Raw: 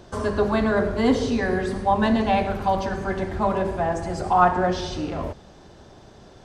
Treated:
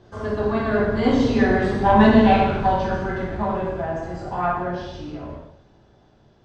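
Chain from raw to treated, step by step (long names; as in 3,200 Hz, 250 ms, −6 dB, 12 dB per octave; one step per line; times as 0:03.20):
source passing by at 0:01.92, 7 m/s, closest 5.5 metres
parametric band 130 Hz +9 dB 0.58 octaves
harmonic generator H 4 −20 dB, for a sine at −6.5 dBFS
high-frequency loss of the air 110 metres
reverb whose tail is shaped and stops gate 290 ms falling, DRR −4.5 dB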